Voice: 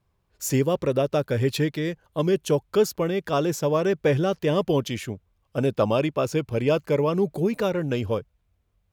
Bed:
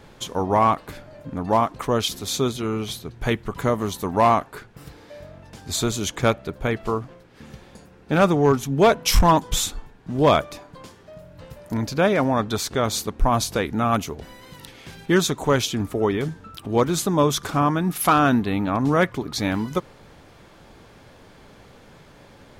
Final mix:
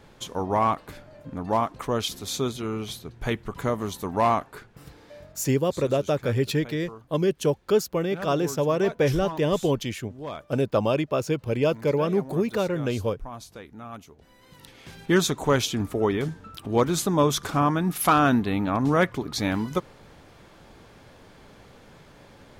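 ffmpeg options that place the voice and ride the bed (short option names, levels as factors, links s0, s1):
-filter_complex "[0:a]adelay=4950,volume=0.891[s0];[1:a]volume=4.22,afade=t=out:st=5.19:d=0.3:silence=0.188365,afade=t=in:st=14.18:d=0.9:silence=0.141254[s1];[s0][s1]amix=inputs=2:normalize=0"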